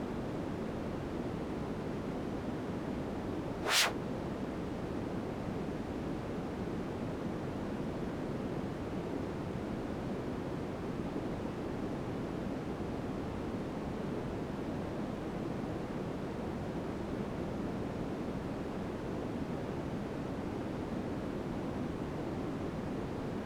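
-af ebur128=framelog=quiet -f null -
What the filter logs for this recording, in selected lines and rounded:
Integrated loudness:
  I:         -38.3 LUFS
  Threshold: -48.3 LUFS
Loudness range:
  LRA:         3.6 LU
  Threshold: -58.3 LUFS
  LRA low:   -39.1 LUFS
  LRA high:  -35.5 LUFS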